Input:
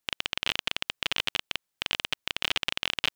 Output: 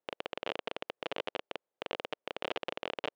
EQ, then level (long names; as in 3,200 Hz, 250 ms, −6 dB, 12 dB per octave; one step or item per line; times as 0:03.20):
resonant band-pass 510 Hz, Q 2.2
+8.0 dB